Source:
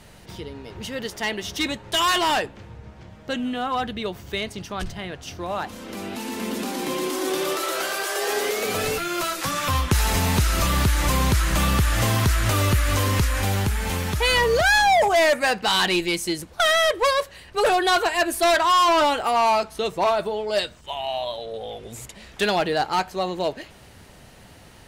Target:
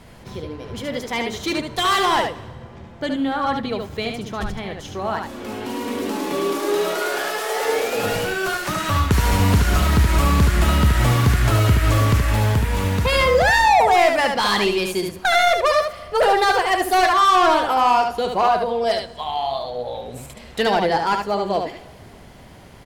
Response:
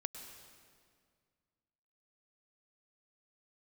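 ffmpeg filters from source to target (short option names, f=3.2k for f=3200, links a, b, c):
-filter_complex "[0:a]asplit=2[a][b];[1:a]atrim=start_sample=2205[c];[b][c]afir=irnorm=-1:irlink=0,volume=-9.5dB[d];[a][d]amix=inputs=2:normalize=0,asetrate=48000,aresample=44100,acontrast=41,highshelf=f=2.5k:g=-7.5,aecho=1:1:73:0.562,volume=-4dB"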